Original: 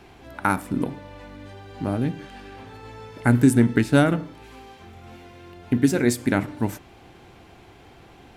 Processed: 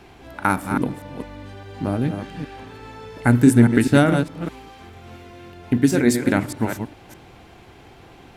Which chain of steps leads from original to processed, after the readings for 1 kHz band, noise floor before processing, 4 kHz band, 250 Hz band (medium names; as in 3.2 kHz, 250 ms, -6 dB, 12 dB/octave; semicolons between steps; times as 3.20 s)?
+3.0 dB, -50 dBFS, +3.0 dB, +3.0 dB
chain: chunks repeated in reverse 204 ms, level -7 dB; trim +2 dB